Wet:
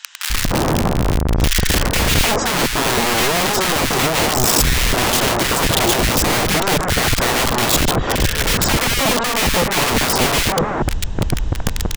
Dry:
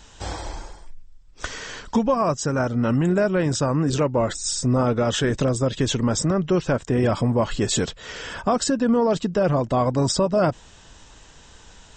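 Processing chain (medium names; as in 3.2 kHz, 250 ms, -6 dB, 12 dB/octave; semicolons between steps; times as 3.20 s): RIAA curve playback; in parallel at -2.5 dB: compressor with a negative ratio -24 dBFS, ratio -1; on the sum: integer overflow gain 15 dB; bands offset in time highs, lows 300 ms, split 1.5 kHz; trim +4 dB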